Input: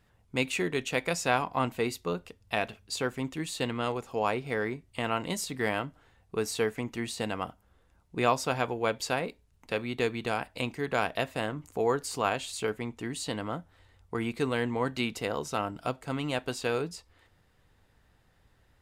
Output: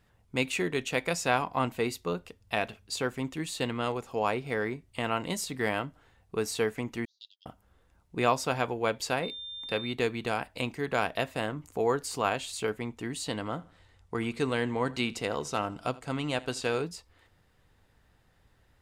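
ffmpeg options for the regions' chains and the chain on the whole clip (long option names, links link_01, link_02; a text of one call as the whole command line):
ffmpeg -i in.wav -filter_complex "[0:a]asettb=1/sr,asplit=3[link_01][link_02][link_03];[link_01]atrim=end=7.054[link_04];[link_02]atrim=start=7.05:end=7.46,asetpts=PTS-STARTPTS,afade=type=in:duration=0.004:curve=qsin,afade=type=out:start_time=0.406:duration=0.004:curve=qsin,agate=range=-32dB:threshold=-32dB:ratio=16:release=100:detection=peak,asuperpass=centerf=4600:order=12:qfactor=1.5[link_05];[link_03]atrim=start=7.456[link_06];[link_04][link_05]acrossfade=duration=0.004:curve1=hsin:curve2=qsin[link_07];[link_07][link_06]acrossfade=duration=0.004:curve1=qsin:curve2=hsin,asettb=1/sr,asplit=3[link_08][link_09][link_10];[link_08]atrim=end=9.234[link_11];[link_09]atrim=start=9.23:end=9.93,asetpts=PTS-STARTPTS,afade=type=in:duration=0.004:curve=qsin,afade=type=out:start_time=0.696:duration=0.004:curve=qsin,equalizer=frequency=6800:width_type=o:width=0.43:gain=-5,aeval=exprs='val(0)+0.0126*sin(2*PI*3600*n/s)':channel_layout=same[link_12];[link_10]atrim=start=9.926[link_13];[link_11][link_12]acrossfade=duration=0.004:curve1=hsin:curve2=qsin[link_14];[link_14][link_13]acrossfade=duration=0.004:curve1=qsin:curve2=hsin,asettb=1/sr,asplit=3[link_15][link_16][link_17];[link_15]atrim=end=13.294[link_18];[link_16]atrim=start=13.29:end=16.85,asetpts=PTS-STARTPTS,afade=type=in:duration=0.004:curve=qsin,afade=type=out:start_time=3.556:duration=0.004:curve=qsin,lowpass=9100,highshelf=frequency=5600:gain=4.5,aecho=1:1:81|162|243:0.0891|0.0312|0.0109,atrim=end_sample=156996[link_19];[link_17]atrim=start=16.846[link_20];[link_18][link_19]acrossfade=duration=0.004:curve1=hsin:curve2=qsin[link_21];[link_21][link_20]acrossfade=duration=0.004:curve1=qsin:curve2=hsin" out.wav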